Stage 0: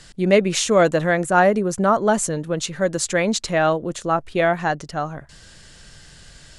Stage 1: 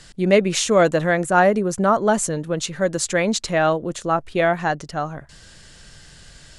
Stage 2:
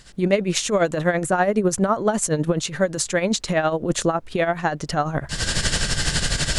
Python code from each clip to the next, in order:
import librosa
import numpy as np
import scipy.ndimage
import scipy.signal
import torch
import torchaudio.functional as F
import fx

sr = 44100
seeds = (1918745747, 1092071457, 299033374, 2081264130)

y1 = x
y2 = fx.recorder_agc(y1, sr, target_db=-7.5, rise_db_per_s=51.0, max_gain_db=30)
y2 = y2 * (1.0 - 0.66 / 2.0 + 0.66 / 2.0 * np.cos(2.0 * np.pi * 12.0 * (np.arange(len(y2)) / sr)))
y2 = fx.dmg_noise_colour(y2, sr, seeds[0], colour='brown', level_db=-51.0)
y2 = F.gain(torch.from_numpy(y2), -2.0).numpy()